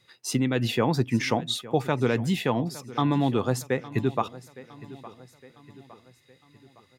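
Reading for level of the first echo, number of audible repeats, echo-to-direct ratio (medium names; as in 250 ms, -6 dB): -18.0 dB, 3, -17.0 dB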